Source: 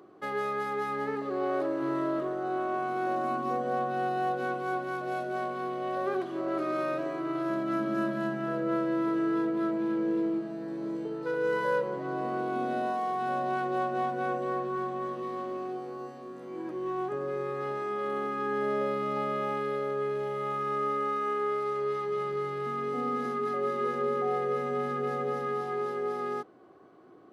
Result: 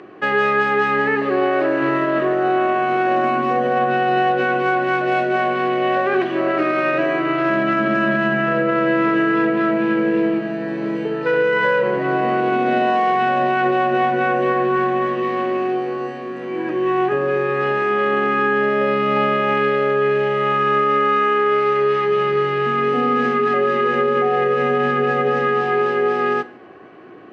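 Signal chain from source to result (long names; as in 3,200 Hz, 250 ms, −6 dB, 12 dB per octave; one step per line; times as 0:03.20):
low-pass filter 4,700 Hz 12 dB per octave
flat-topped bell 2,200 Hz +10.5 dB 1 octave
notch filter 2,100 Hz, Q 14
on a send at −15 dB: convolution reverb RT60 0.80 s, pre-delay 5 ms
on the sum: boost into a limiter +22 dB
level −8.5 dB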